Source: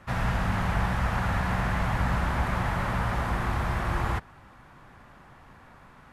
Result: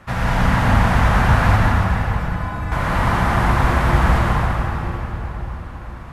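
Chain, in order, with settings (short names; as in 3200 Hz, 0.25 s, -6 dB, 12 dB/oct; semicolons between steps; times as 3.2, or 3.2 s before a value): 1.56–2.72 metallic resonator 150 Hz, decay 0.63 s, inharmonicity 0.008; reverb RT60 4.3 s, pre-delay 84 ms, DRR -4 dB; gain +6 dB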